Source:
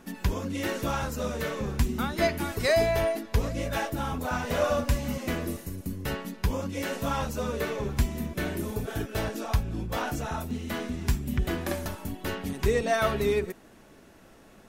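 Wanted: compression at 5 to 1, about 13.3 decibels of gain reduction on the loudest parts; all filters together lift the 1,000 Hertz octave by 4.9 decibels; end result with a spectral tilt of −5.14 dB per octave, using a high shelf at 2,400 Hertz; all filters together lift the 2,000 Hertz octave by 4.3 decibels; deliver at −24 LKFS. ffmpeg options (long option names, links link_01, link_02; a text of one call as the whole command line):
ffmpeg -i in.wav -af "equalizer=frequency=1000:width_type=o:gain=6.5,equalizer=frequency=2000:width_type=o:gain=6.5,highshelf=frequency=2400:gain=-7.5,acompressor=threshold=-33dB:ratio=5,volume=12.5dB" out.wav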